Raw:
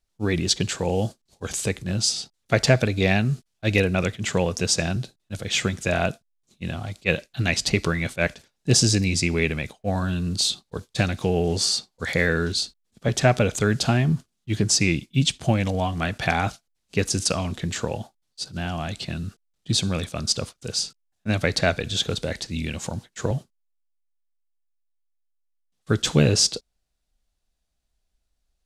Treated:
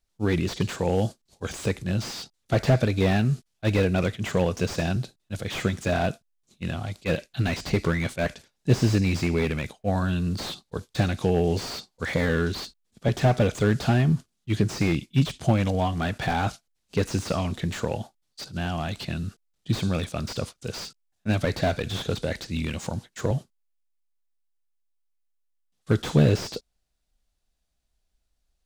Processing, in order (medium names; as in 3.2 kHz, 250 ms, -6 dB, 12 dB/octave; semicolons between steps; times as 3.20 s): slew-rate limiter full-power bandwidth 85 Hz